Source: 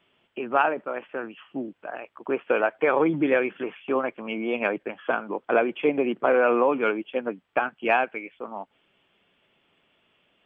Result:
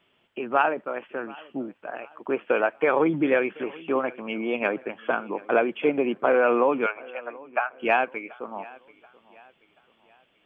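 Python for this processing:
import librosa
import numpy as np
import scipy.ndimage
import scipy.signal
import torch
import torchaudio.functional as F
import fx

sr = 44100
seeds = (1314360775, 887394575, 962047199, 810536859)

y = fx.cheby1_bandpass(x, sr, low_hz=630.0, high_hz=2600.0, order=3, at=(6.86, 7.79))
y = fx.echo_feedback(y, sr, ms=732, feedback_pct=40, wet_db=-22)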